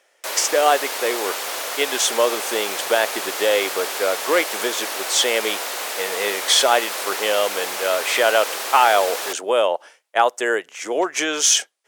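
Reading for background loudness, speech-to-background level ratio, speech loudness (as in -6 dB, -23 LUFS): -25.5 LUFS, 5.0 dB, -20.5 LUFS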